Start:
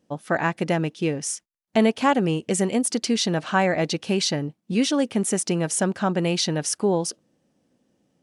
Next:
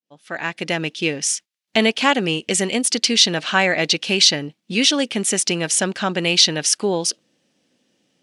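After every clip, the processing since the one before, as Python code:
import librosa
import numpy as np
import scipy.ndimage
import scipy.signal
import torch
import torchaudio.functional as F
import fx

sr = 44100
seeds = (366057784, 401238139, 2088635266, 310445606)

y = fx.fade_in_head(x, sr, length_s=0.93)
y = fx.weighting(y, sr, curve='D')
y = y * 10.0 ** (1.5 / 20.0)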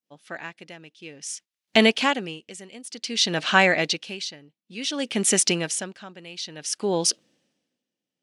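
y = x * 10.0 ** (-22 * (0.5 - 0.5 * np.cos(2.0 * np.pi * 0.56 * np.arange(len(x)) / sr)) / 20.0)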